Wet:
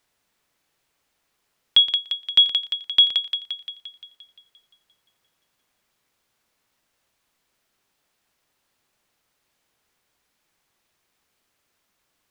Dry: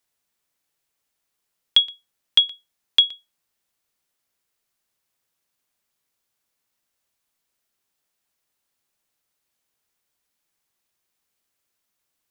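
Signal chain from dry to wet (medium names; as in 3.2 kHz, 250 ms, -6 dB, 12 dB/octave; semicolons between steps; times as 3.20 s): treble shelf 5.6 kHz -10 dB; on a send: thinning echo 174 ms, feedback 62%, high-pass 680 Hz, level -14.5 dB; on the sum: loudness maximiser +16 dB; trim -6 dB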